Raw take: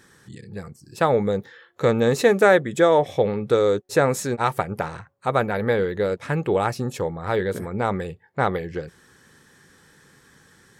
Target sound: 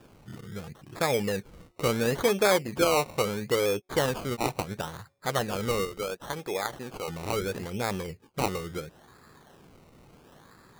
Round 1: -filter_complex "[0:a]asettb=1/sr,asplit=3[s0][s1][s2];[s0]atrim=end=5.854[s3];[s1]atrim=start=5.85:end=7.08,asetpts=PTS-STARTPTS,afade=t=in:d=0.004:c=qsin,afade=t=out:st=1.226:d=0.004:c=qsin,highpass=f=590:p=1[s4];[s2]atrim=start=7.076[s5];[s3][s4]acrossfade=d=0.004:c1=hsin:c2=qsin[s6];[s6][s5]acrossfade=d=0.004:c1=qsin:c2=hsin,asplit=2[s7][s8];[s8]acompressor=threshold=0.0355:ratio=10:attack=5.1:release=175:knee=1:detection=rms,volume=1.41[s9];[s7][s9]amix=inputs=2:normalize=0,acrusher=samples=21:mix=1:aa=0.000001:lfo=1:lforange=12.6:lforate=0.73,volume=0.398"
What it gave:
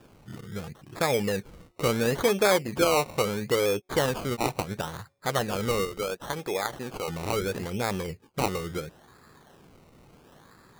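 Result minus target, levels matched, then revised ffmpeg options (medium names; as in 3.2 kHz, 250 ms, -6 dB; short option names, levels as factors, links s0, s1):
compression: peak gain reduction -7 dB
-filter_complex "[0:a]asettb=1/sr,asplit=3[s0][s1][s2];[s0]atrim=end=5.854[s3];[s1]atrim=start=5.85:end=7.08,asetpts=PTS-STARTPTS,afade=t=in:d=0.004:c=qsin,afade=t=out:st=1.226:d=0.004:c=qsin,highpass=f=590:p=1[s4];[s2]atrim=start=7.076[s5];[s3][s4]acrossfade=d=0.004:c1=hsin:c2=qsin[s6];[s6][s5]acrossfade=d=0.004:c1=qsin:c2=hsin,asplit=2[s7][s8];[s8]acompressor=threshold=0.0141:ratio=10:attack=5.1:release=175:knee=1:detection=rms,volume=1.41[s9];[s7][s9]amix=inputs=2:normalize=0,acrusher=samples=21:mix=1:aa=0.000001:lfo=1:lforange=12.6:lforate=0.73,volume=0.398"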